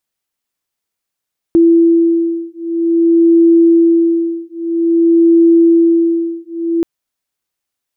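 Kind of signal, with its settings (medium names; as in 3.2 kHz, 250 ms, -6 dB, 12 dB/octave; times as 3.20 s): beating tones 334 Hz, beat 0.51 Hz, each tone -10.5 dBFS 5.28 s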